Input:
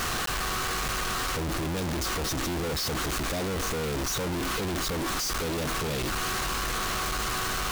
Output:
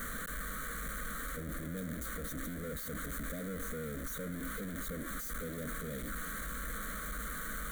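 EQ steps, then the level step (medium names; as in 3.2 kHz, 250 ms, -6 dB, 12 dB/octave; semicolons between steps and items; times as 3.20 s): static phaser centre 540 Hz, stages 8; static phaser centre 2.2 kHz, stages 4; -5.0 dB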